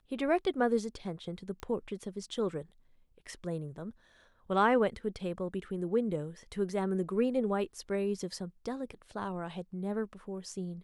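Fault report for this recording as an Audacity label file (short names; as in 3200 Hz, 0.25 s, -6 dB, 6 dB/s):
1.600000	1.600000	pop -28 dBFS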